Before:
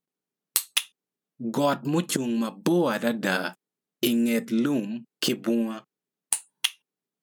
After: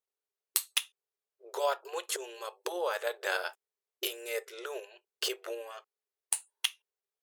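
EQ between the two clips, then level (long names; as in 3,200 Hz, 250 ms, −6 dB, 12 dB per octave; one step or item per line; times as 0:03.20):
linear-phase brick-wall high-pass 370 Hz
−5.5 dB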